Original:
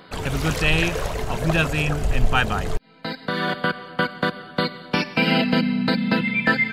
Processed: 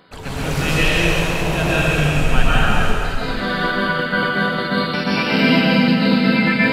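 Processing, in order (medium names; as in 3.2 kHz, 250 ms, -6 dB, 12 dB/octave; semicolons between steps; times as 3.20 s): plate-style reverb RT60 2.7 s, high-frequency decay 1×, pre-delay 110 ms, DRR -9.5 dB; trim -5 dB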